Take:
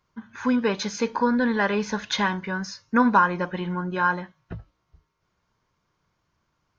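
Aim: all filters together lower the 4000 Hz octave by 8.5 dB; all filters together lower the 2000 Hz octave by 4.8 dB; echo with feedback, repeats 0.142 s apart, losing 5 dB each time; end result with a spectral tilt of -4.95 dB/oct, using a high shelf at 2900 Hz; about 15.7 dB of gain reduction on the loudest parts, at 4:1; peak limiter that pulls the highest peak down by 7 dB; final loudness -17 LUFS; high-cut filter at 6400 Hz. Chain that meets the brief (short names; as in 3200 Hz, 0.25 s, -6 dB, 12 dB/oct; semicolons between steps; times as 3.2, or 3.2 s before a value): LPF 6400 Hz; bell 2000 Hz -4.5 dB; high shelf 2900 Hz -5 dB; bell 4000 Hz -4.5 dB; compressor 4:1, threshold -35 dBFS; limiter -29.5 dBFS; feedback echo 0.142 s, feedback 56%, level -5 dB; gain +21.5 dB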